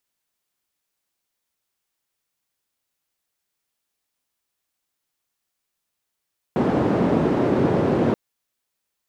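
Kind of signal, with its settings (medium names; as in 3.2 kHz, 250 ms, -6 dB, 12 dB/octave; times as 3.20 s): noise band 150–380 Hz, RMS -19.5 dBFS 1.58 s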